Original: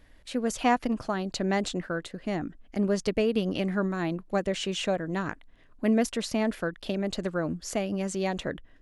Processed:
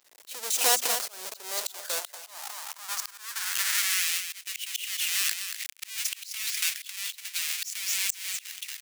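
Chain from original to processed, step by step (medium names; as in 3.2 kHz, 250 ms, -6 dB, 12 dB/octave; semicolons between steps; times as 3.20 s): square wave that keeps the level; recorder AGC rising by 67 dB/s; peaking EQ 310 Hz -12.5 dB 2.6 oct; hum notches 60/120/180/240 Hz; delay 232 ms -8.5 dB; high-pass sweep 420 Hz -> 2.3 kHz, 1.41–4.13 s; bit crusher 9-bit; tone controls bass -14 dB, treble +13 dB; slow attack 458 ms; tape noise reduction on one side only decoder only; trim -4 dB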